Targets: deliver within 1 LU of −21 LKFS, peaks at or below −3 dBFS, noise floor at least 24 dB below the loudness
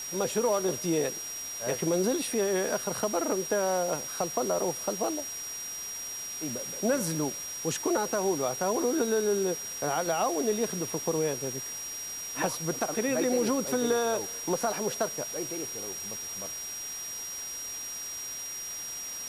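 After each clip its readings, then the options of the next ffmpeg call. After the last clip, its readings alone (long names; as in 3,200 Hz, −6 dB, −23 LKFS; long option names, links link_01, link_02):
interfering tone 5,700 Hz; level of the tone −36 dBFS; background noise floor −38 dBFS; target noise floor −54 dBFS; integrated loudness −30.0 LKFS; sample peak −15.0 dBFS; target loudness −21.0 LKFS
→ -af "bandreject=frequency=5700:width=30"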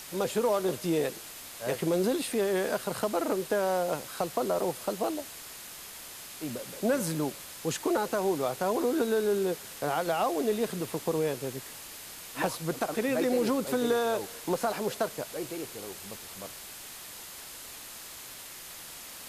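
interfering tone none found; background noise floor −45 dBFS; target noise floor −55 dBFS
→ -af "afftdn=noise_reduction=10:noise_floor=-45"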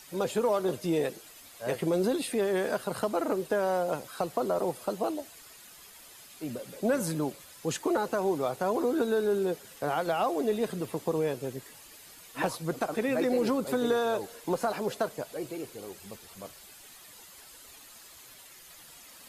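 background noise floor −52 dBFS; target noise floor −55 dBFS
→ -af "afftdn=noise_reduction=6:noise_floor=-52"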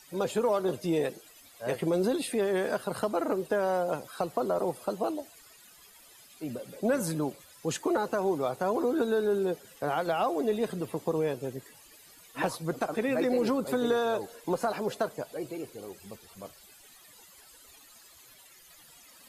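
background noise floor −56 dBFS; integrated loudness −30.5 LKFS; sample peak −16.0 dBFS; target loudness −21.0 LKFS
→ -af "volume=9.5dB"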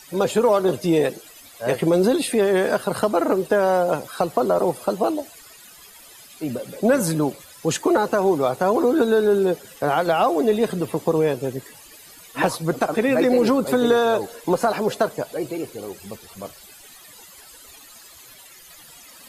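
integrated loudness −21.0 LKFS; sample peak −6.5 dBFS; background noise floor −46 dBFS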